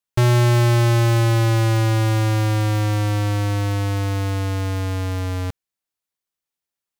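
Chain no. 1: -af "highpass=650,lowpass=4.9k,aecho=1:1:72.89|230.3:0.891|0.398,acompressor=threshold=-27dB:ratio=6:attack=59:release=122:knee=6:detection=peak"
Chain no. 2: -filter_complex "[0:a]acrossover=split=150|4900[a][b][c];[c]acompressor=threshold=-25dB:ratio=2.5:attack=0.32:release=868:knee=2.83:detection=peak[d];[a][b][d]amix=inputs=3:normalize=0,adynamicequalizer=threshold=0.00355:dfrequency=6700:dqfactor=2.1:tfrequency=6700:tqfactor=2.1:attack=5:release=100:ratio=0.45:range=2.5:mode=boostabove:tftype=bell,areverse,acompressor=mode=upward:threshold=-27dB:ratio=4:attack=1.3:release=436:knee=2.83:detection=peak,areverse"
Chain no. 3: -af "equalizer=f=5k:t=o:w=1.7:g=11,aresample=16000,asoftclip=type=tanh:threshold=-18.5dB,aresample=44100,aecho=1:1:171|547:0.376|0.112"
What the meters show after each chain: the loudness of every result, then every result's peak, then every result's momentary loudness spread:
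-27.5, -19.5, -22.0 LUFS; -10.5, -9.5, -12.5 dBFS; 7, 9, 6 LU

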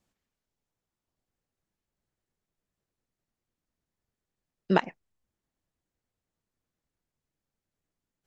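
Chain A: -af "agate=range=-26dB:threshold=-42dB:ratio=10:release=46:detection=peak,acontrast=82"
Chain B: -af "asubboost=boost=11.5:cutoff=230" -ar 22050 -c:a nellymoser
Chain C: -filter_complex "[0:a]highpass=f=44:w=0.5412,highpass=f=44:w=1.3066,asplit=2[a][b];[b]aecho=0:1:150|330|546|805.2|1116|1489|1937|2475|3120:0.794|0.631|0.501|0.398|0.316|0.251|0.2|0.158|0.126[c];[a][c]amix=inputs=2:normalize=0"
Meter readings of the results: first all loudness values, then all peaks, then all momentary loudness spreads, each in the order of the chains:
-21.5, -17.0, -31.0 LUFS; -3.0, -2.5, -5.5 dBFS; 0, 0, 19 LU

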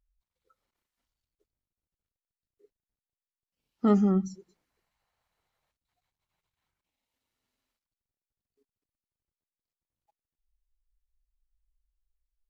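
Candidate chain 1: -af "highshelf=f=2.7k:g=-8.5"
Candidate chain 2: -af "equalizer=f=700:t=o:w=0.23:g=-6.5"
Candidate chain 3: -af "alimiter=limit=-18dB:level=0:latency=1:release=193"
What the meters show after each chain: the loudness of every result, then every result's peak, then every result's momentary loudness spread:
-25.5, -25.5, -28.5 LUFS; -10.5, -10.5, -18.0 dBFS; 10, 10, 9 LU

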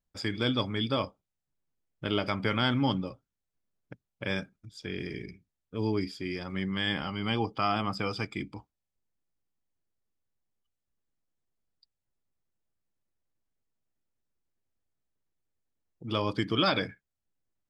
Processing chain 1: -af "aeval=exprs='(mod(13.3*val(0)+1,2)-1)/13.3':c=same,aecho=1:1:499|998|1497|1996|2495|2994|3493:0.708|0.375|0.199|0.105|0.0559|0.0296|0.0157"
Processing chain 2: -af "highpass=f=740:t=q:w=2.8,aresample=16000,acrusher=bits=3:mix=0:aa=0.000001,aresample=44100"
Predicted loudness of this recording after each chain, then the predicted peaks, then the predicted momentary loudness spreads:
-31.0, -28.5 LUFS; -18.0, -9.5 dBFS; 12, 16 LU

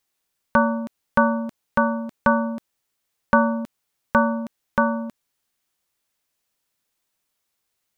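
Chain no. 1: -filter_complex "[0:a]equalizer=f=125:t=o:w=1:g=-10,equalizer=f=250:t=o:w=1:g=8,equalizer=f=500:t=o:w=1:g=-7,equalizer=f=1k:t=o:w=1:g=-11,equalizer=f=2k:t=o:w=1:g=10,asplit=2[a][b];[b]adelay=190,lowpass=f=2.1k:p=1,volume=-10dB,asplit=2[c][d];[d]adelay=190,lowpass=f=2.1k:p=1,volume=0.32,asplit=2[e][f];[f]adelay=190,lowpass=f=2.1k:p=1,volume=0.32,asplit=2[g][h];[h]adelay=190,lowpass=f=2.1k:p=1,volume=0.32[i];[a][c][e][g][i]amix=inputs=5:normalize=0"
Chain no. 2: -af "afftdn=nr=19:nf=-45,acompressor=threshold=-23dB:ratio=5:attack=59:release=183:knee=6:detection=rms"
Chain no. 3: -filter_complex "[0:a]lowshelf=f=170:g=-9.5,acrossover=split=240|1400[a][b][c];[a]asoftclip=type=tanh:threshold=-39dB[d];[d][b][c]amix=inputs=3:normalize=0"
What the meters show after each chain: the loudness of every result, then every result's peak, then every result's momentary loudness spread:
-23.0, -28.5, -24.5 LUFS; -5.0, -4.5, -5.0 dBFS; 16, 7, 12 LU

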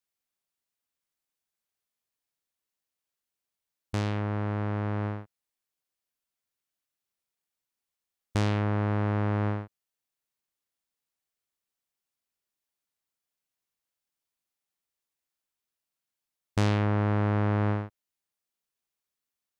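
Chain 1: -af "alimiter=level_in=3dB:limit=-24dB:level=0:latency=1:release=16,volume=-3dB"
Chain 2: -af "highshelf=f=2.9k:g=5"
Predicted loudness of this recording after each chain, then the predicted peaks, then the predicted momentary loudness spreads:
-35.5, -28.5 LUFS; -27.0, -11.5 dBFS; 8, 10 LU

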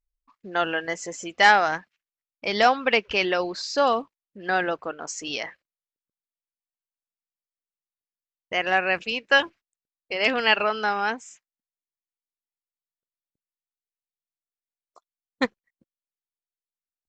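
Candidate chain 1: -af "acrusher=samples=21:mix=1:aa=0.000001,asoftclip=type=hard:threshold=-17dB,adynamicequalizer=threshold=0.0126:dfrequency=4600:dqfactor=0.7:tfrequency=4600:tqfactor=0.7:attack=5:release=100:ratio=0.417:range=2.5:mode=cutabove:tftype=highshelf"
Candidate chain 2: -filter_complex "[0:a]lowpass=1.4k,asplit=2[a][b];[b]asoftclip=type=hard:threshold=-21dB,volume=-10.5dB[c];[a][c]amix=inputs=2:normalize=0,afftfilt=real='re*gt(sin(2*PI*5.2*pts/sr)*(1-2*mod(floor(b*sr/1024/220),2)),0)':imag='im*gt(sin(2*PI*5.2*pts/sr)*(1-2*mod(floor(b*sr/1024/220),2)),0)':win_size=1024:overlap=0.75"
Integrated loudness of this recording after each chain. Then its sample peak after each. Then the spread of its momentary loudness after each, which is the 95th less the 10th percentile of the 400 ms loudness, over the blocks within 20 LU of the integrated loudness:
-26.5, -27.5 LUFS; -16.5, -7.5 dBFS; 12, 16 LU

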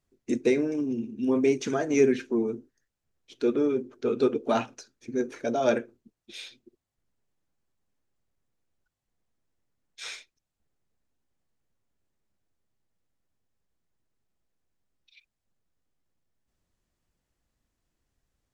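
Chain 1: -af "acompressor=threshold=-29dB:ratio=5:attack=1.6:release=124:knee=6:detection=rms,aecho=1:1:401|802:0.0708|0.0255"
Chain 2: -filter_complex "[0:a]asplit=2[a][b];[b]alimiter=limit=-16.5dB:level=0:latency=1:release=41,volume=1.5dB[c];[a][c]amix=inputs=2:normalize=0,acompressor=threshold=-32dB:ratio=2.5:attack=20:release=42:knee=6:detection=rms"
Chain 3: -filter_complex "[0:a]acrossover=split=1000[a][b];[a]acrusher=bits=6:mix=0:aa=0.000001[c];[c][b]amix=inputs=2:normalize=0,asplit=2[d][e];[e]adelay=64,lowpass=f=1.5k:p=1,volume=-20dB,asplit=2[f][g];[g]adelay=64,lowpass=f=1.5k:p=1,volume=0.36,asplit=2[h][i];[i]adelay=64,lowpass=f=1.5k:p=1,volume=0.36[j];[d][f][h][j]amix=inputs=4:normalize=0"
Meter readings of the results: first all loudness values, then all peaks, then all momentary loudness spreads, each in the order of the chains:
-36.5, -31.0, -27.0 LUFS; -22.0, -16.5, -10.0 dBFS; 12, 11, 19 LU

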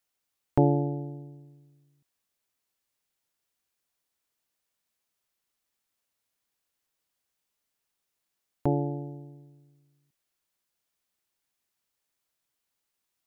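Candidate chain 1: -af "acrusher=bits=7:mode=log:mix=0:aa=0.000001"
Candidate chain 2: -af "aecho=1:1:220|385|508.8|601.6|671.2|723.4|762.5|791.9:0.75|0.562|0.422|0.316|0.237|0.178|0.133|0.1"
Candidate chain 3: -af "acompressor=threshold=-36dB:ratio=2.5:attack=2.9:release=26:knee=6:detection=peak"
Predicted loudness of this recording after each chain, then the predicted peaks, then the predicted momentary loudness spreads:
-28.5, -27.5, -38.5 LUFS; -9.5, -9.0, -16.5 dBFS; 20, 18, 18 LU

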